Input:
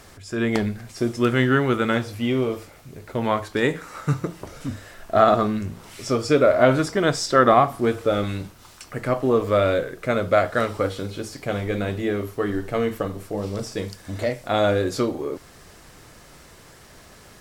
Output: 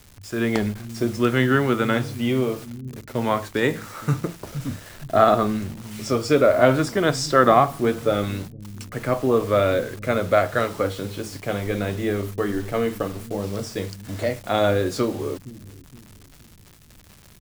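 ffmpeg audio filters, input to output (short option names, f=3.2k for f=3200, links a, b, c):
-filter_complex "[0:a]acrossover=split=240[a][b];[a]aecho=1:1:468|936|1404|1872|2340:0.398|0.163|0.0669|0.0274|0.0112[c];[b]acrusher=bits=6:mix=0:aa=0.000001[d];[c][d]amix=inputs=2:normalize=0"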